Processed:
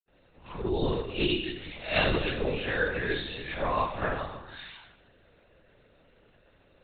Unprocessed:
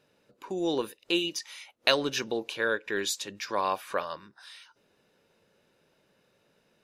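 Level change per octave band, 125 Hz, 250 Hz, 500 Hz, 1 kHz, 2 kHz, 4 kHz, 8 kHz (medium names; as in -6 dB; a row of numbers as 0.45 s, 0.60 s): +12.5 dB, +0.5 dB, +0.5 dB, +0.5 dB, +1.5 dB, -2.5 dB, under -40 dB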